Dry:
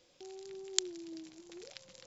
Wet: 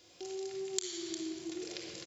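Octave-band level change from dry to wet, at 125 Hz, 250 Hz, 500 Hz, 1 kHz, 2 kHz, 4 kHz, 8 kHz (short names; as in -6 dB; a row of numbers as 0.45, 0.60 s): +8.0 dB, +6.5 dB, +6.0 dB, +4.5 dB, +1.5 dB, -1.0 dB, n/a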